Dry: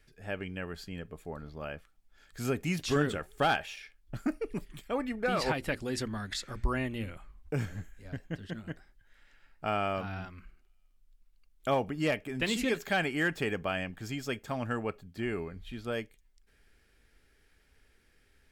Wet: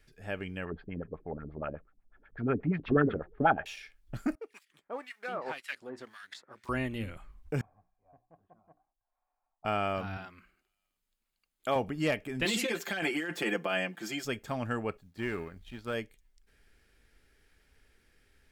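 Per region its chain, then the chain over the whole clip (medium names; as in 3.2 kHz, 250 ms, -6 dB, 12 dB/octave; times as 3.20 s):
0.65–3.66 s: low-pass 3.7 kHz 24 dB/octave + LFO low-pass sine 8.2 Hz 250–2000 Hz
4.35–6.69 s: companding laws mixed up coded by A + frequency weighting A + harmonic tremolo 1.9 Hz, depth 100%, crossover 1.3 kHz
7.61–9.65 s: cascade formant filter a + hum notches 60/120/180/240/300/360 Hz
10.17–11.76 s: high-pass 340 Hz 6 dB/octave + band-stop 5.7 kHz, Q 11
12.45–14.25 s: high-pass 220 Hz 24 dB/octave + comb 5.8 ms, depth 86% + compressor with a negative ratio -31 dBFS
14.97–15.94 s: companding laws mixed up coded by A + band-stop 690 Hz + dynamic bell 1.5 kHz, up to +4 dB, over -55 dBFS, Q 1.1
whole clip: none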